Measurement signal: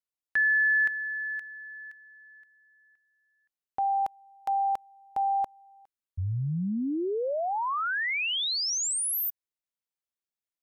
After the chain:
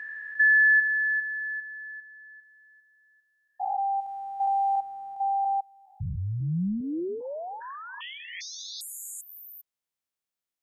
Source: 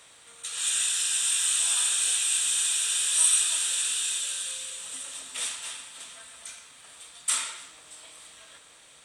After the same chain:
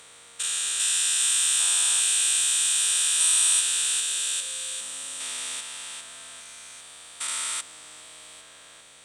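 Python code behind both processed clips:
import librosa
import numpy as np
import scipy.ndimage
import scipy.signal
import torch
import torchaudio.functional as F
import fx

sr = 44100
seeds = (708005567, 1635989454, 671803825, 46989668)

y = fx.spec_steps(x, sr, hold_ms=400)
y = y * 10.0 ** (4.5 / 20.0)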